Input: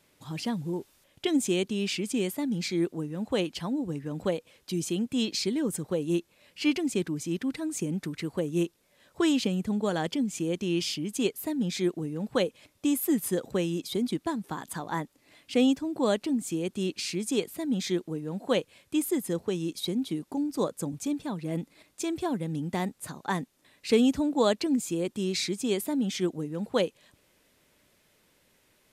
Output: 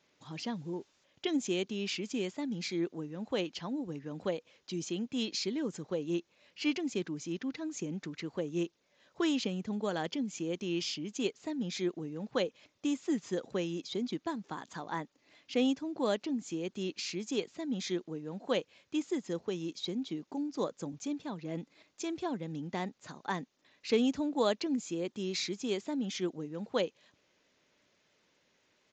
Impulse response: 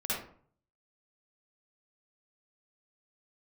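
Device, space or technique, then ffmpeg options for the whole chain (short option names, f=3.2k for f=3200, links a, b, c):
Bluetooth headset: -af "highpass=f=200:p=1,aresample=16000,aresample=44100,volume=-4.5dB" -ar 16000 -c:a sbc -b:a 64k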